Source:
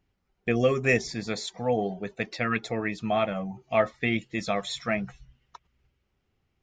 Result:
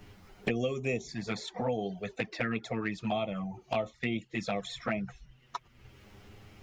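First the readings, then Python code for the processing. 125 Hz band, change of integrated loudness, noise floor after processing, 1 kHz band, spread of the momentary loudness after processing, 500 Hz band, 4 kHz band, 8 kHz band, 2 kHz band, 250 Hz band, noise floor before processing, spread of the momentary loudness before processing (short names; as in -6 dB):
-5.0 dB, -6.5 dB, -63 dBFS, -6.5 dB, 12 LU, -7.0 dB, -5.5 dB, -7.5 dB, -7.5 dB, -4.5 dB, -76 dBFS, 9 LU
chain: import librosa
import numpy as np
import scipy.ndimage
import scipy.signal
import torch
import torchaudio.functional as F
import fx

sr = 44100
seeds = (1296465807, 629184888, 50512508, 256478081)

y = fx.env_flanger(x, sr, rest_ms=9.9, full_db=-22.5)
y = fx.band_squash(y, sr, depth_pct=100)
y = y * 10.0 ** (-4.5 / 20.0)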